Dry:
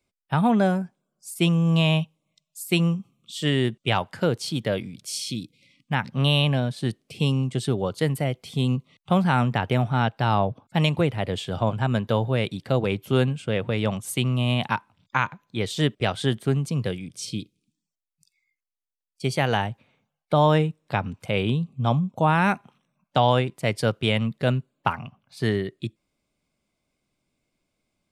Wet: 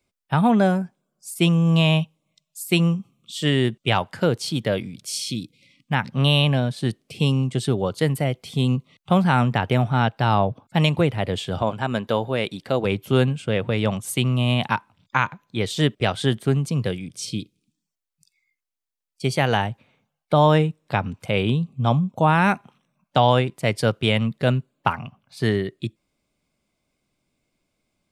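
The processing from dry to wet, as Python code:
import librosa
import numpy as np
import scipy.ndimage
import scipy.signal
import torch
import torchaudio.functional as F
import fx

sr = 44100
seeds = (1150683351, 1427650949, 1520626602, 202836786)

y = fx.peak_eq(x, sr, hz=110.0, db=-9.0, octaves=1.5, at=(11.62, 12.85))
y = F.gain(torch.from_numpy(y), 2.5).numpy()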